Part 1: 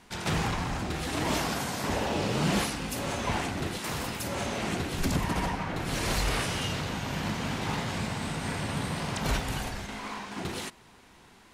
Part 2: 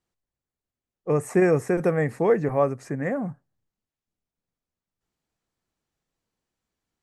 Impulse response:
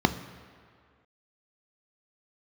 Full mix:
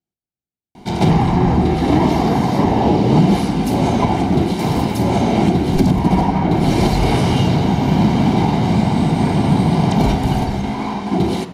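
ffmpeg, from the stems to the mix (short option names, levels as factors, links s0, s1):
-filter_complex "[0:a]equalizer=f=590:w=0.98:g=4,adelay=750,volume=1,asplit=2[s0][s1];[s1]volume=0.562[s2];[1:a]volume=0.251,asplit=3[s3][s4][s5];[s4]volume=0.158[s6];[s5]apad=whole_len=541986[s7];[s0][s7]sidechaincompress=threshold=0.0126:ratio=8:attack=16:release=528[s8];[2:a]atrim=start_sample=2205[s9];[s2][s6]amix=inputs=2:normalize=0[s10];[s10][s9]afir=irnorm=-1:irlink=0[s11];[s8][s3][s11]amix=inputs=3:normalize=0,alimiter=limit=0.668:level=0:latency=1:release=378"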